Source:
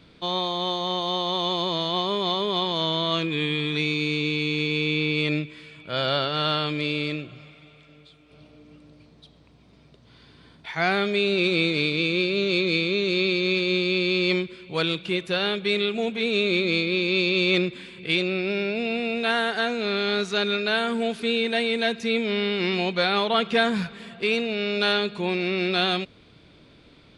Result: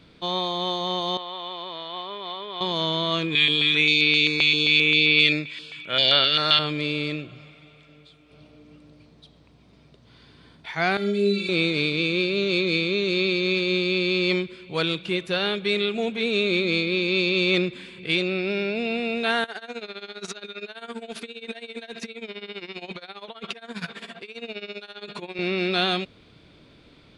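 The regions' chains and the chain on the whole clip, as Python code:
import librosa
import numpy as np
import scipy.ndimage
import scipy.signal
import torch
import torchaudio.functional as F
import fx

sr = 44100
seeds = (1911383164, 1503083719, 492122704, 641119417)

y = fx.chain(x, sr, fx.highpass(hz=1400.0, slope=6),
    fx.air_absorb(metres=340.0), at=(1.17, 2.61))
y = fx.chain(y, sr, fx.weighting(curve='D'),
    fx.filter_held_notch(hz=7.6, low_hz=380.0, high_hz=7100.0), at=(3.35, 6.59))
y = fx.chain(y, sr, fx.high_shelf(hz=4000.0, db=11.0),
    fx.stiff_resonator(f0_hz=200.0, decay_s=0.2, stiffness=0.008),
    fx.room_flutter(wall_m=6.8, rt60_s=0.46), at=(10.97, 11.49))
y = fx.chain(y, sr, fx.highpass(hz=380.0, slope=6),
    fx.over_compress(threshold_db=-34.0, ratio=-1.0),
    fx.tremolo(hz=15.0, depth=0.85), at=(19.44, 25.39))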